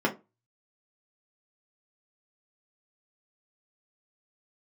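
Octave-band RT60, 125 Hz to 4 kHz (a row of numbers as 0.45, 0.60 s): 0.30, 0.30, 0.25, 0.25, 0.20, 0.15 s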